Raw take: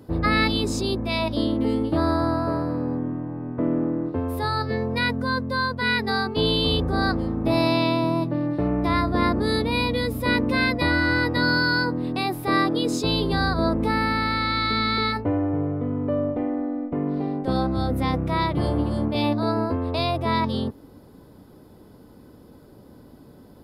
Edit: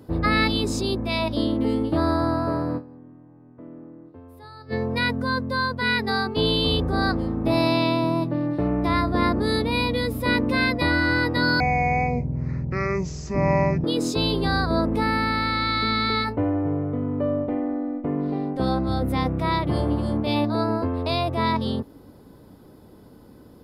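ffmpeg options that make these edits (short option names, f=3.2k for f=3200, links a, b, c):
-filter_complex "[0:a]asplit=5[a][b][c][d][e];[a]atrim=end=3,asetpts=PTS-STARTPTS,afade=t=out:st=2.77:d=0.23:c=exp:silence=0.11885[f];[b]atrim=start=3:end=4.5,asetpts=PTS-STARTPTS,volume=-18.5dB[g];[c]atrim=start=4.5:end=11.604,asetpts=PTS-STARTPTS,afade=t=in:d=0.23:c=exp:silence=0.11885[h];[d]atrim=start=11.6:end=12.72,asetpts=PTS-STARTPTS,asetrate=22050,aresample=44100[i];[e]atrim=start=12.716[j];[f][g][h]concat=n=3:v=0:a=1[k];[k][i]acrossfade=d=0.004:c1=hsin:c2=hsin[l];[l][j]acrossfade=d=0.004:c1=hsin:c2=hsin"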